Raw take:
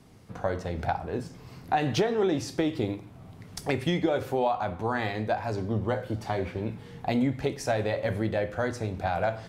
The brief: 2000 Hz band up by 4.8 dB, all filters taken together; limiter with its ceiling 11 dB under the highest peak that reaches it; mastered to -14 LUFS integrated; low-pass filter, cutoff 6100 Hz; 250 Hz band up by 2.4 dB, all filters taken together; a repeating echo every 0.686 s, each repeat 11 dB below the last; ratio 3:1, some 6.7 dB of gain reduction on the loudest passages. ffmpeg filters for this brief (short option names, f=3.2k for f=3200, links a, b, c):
-af "lowpass=6.1k,equalizer=f=250:t=o:g=3,equalizer=f=2k:t=o:g=6,acompressor=threshold=-28dB:ratio=3,alimiter=level_in=0.5dB:limit=-24dB:level=0:latency=1,volume=-0.5dB,aecho=1:1:686|1372|2058:0.282|0.0789|0.0221,volume=21.5dB"